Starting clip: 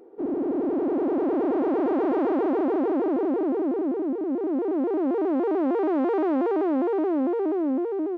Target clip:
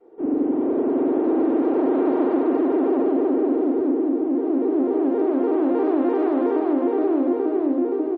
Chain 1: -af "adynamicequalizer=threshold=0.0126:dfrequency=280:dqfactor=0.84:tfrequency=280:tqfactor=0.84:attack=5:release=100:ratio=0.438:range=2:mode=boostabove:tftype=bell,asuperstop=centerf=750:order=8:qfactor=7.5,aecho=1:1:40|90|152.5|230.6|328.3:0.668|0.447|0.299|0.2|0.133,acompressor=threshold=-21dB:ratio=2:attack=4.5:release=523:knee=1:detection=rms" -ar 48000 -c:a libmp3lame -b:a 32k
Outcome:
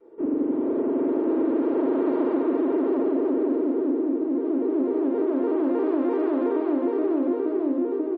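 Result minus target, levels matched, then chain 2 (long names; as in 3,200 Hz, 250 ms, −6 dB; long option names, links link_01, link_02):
downward compressor: peak gain reduction +3 dB; 1,000 Hz band −2.5 dB
-af "adynamicequalizer=threshold=0.0126:dfrequency=280:dqfactor=0.84:tfrequency=280:tqfactor=0.84:attack=5:release=100:ratio=0.438:range=2:mode=boostabove:tftype=bell,aecho=1:1:40|90|152.5|230.6|328.3:0.668|0.447|0.299|0.2|0.133,acompressor=threshold=-15dB:ratio=2:attack=4.5:release=523:knee=1:detection=rms" -ar 48000 -c:a libmp3lame -b:a 32k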